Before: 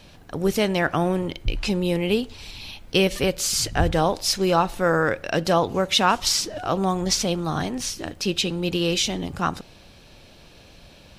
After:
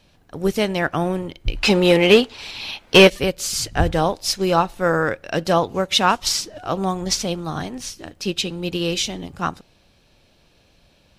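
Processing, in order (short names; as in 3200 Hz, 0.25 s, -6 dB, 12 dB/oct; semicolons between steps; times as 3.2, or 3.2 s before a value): 1.63–3.1 overdrive pedal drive 20 dB, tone 3000 Hz, clips at -3.5 dBFS; upward expander 1.5:1, over -39 dBFS; gain +5 dB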